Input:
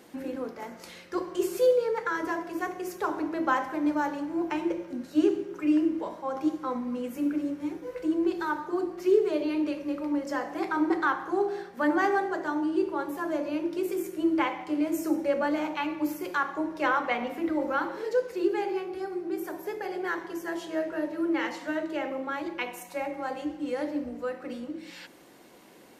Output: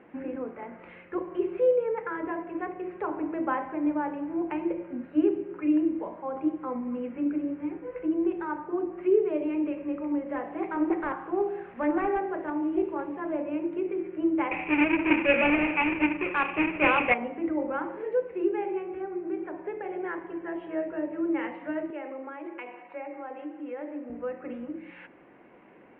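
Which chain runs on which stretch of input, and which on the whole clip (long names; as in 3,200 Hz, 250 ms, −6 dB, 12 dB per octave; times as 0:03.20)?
0:10.30–0:13.42: linear delta modulator 64 kbit/s, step −42.5 dBFS + highs frequency-modulated by the lows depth 0.19 ms
0:14.51–0:17.14: each half-wave held at its own peak + low-pass with resonance 2,500 Hz, resonance Q 8.2
0:21.90–0:24.10: high-pass filter 250 Hz 24 dB per octave + downward compressor 1.5 to 1, threshold −41 dBFS
whole clip: Butterworth low-pass 2,600 Hz 48 dB per octave; dynamic equaliser 1,500 Hz, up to −6 dB, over −44 dBFS, Q 1.1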